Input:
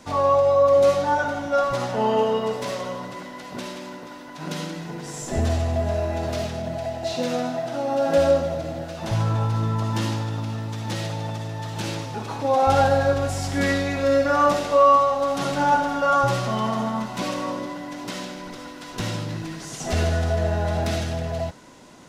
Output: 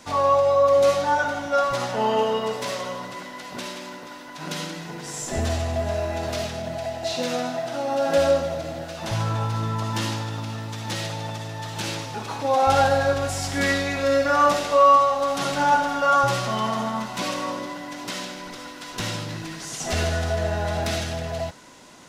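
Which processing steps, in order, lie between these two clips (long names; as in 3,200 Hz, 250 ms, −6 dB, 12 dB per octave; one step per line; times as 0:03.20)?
tilt shelving filter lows −3.5 dB, about 790 Hz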